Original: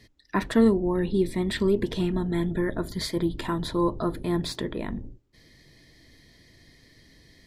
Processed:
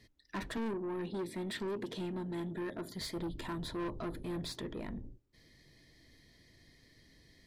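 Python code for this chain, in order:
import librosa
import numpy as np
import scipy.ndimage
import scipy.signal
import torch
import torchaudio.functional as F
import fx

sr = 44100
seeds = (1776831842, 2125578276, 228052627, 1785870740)

y = fx.highpass(x, sr, hz=170.0, slope=12, at=(0.57, 3.01))
y = 10.0 ** (-26.5 / 20.0) * np.tanh(y / 10.0 ** (-26.5 / 20.0))
y = F.gain(torch.from_numpy(y), -7.5).numpy()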